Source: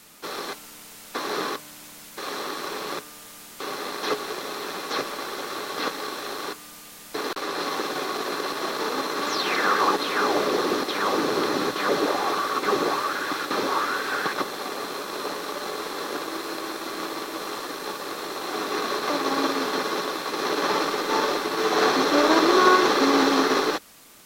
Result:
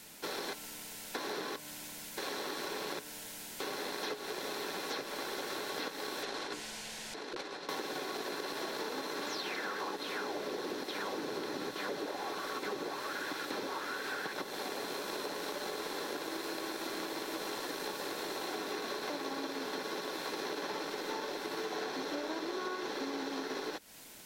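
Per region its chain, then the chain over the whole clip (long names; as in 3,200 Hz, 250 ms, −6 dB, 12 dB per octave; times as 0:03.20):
0:06.23–0:07.69: low-pass filter 7,100 Hz + mains-hum notches 60/120/180/240/300/360/420/480/540/600 Hz + compressor whose output falls as the input rises −35 dBFS, ratio −0.5
whole clip: notch filter 1,200 Hz, Q 5.1; downward compressor 12 to 1, threshold −33 dBFS; level −2 dB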